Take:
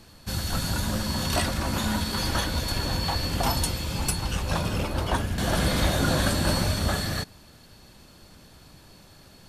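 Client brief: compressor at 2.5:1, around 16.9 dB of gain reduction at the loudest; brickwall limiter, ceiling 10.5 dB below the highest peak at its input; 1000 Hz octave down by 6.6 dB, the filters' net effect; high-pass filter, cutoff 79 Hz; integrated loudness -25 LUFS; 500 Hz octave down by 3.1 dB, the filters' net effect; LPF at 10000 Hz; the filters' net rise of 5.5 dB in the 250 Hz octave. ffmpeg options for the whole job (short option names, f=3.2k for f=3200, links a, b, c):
-af "highpass=79,lowpass=10k,equalizer=f=250:t=o:g=8.5,equalizer=f=500:t=o:g=-4,equalizer=f=1k:t=o:g=-8,acompressor=threshold=-45dB:ratio=2.5,volume=21dB,alimiter=limit=-16dB:level=0:latency=1"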